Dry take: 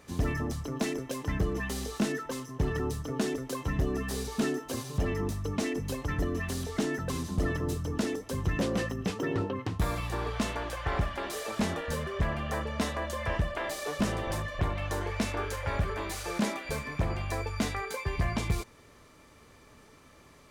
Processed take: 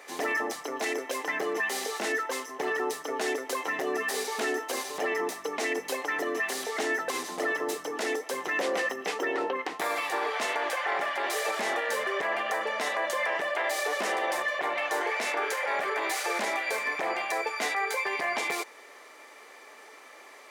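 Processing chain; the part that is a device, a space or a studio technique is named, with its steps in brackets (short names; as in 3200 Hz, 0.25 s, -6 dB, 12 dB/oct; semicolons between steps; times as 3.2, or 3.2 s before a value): laptop speaker (HPF 380 Hz 24 dB/oct; bell 780 Hz +6.5 dB 0.36 oct; bell 2000 Hz +8 dB 0.52 oct; limiter -26 dBFS, peak gain reduction 9.5 dB); gain +6 dB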